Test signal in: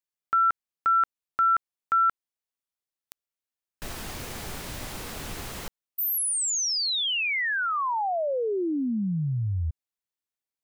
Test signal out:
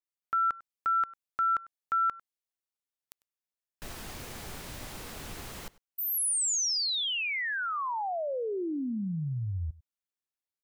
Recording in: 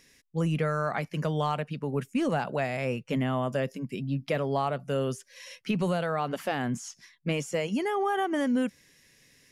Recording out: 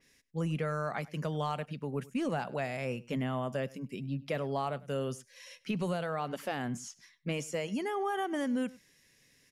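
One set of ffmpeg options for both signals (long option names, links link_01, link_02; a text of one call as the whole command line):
ffmpeg -i in.wav -filter_complex "[0:a]asplit=2[link_01][link_02];[link_02]adelay=99.13,volume=-21dB,highshelf=frequency=4000:gain=-2.23[link_03];[link_01][link_03]amix=inputs=2:normalize=0,adynamicequalizer=threshold=0.0141:dfrequency=3900:dqfactor=0.7:tfrequency=3900:tqfactor=0.7:attack=5:release=100:ratio=0.375:range=2:mode=boostabove:tftype=highshelf,volume=-5.5dB" out.wav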